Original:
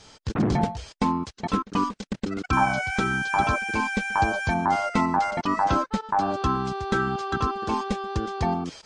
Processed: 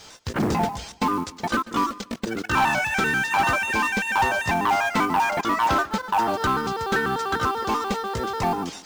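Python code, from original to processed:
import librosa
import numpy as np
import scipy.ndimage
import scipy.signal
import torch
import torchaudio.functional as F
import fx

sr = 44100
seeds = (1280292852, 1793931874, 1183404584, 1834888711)

y = fx.pitch_trill(x, sr, semitones=2.5, every_ms=98)
y = fx.low_shelf(y, sr, hz=350.0, db=-7.5)
y = 10.0 ** (-20.5 / 20.0) * np.tanh(y / 10.0 ** (-20.5 / 20.0))
y = fx.quant_companded(y, sr, bits=6)
y = fx.echo_warbled(y, sr, ms=144, feedback_pct=36, rate_hz=2.8, cents=58, wet_db=-20.0)
y = y * librosa.db_to_amplitude(6.0)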